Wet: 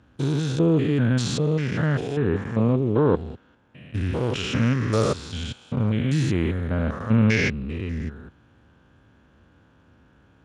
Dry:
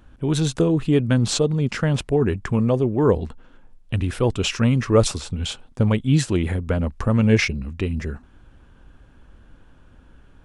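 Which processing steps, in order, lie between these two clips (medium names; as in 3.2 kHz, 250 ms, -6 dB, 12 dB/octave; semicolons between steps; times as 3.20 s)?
spectrogram pixelated in time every 200 ms; dynamic bell 1.6 kHz, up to +6 dB, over -47 dBFS, Q 1.4; Speex 36 kbps 32 kHz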